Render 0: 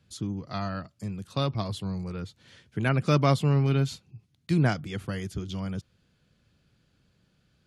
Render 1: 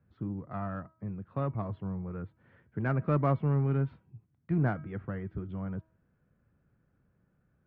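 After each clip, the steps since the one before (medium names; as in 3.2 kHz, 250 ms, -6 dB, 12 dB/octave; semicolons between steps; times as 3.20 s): inverse Chebyshev low-pass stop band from 8.9 kHz, stop band 80 dB; de-hum 320.5 Hz, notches 10; in parallel at -9 dB: saturation -25 dBFS, distortion -8 dB; on the sum: trim -6 dB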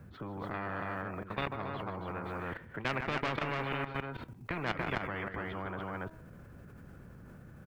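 on a send: loudspeakers at several distances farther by 52 m -10 dB, 97 m -5 dB; on the sum: level held to a coarse grid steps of 15 dB; spectrum-flattening compressor 4:1; trim +1.5 dB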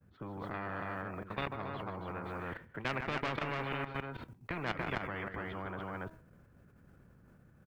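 expander -44 dBFS; trim -2 dB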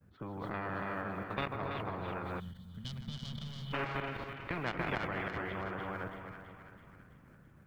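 two-band feedback delay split 1.1 kHz, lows 237 ms, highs 330 ms, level -7 dB; time-frequency box 2.40–3.73 s, 250–2900 Hz -23 dB; endings held to a fixed fall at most 210 dB/s; trim +1 dB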